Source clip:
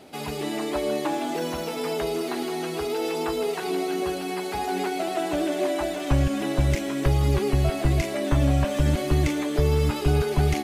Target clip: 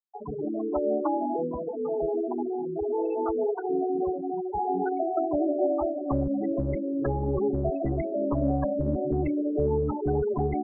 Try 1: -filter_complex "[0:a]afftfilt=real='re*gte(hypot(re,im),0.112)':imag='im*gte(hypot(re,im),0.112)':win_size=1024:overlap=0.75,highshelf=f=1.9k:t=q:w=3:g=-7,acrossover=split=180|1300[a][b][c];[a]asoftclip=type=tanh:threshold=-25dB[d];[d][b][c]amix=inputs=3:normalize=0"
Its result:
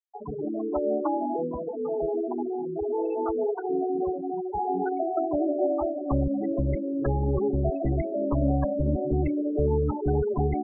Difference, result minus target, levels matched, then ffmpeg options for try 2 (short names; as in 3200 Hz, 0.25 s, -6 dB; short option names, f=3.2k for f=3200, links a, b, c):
soft clip: distortion -4 dB
-filter_complex "[0:a]afftfilt=real='re*gte(hypot(re,im),0.112)':imag='im*gte(hypot(re,im),0.112)':win_size=1024:overlap=0.75,highshelf=f=1.9k:t=q:w=3:g=-7,acrossover=split=180|1300[a][b][c];[a]asoftclip=type=tanh:threshold=-31.5dB[d];[d][b][c]amix=inputs=3:normalize=0"